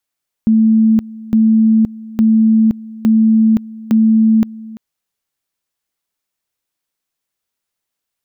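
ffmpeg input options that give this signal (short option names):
-f lavfi -i "aevalsrc='pow(10,(-7-20.5*gte(mod(t,0.86),0.52))/20)*sin(2*PI*221*t)':d=4.3:s=44100"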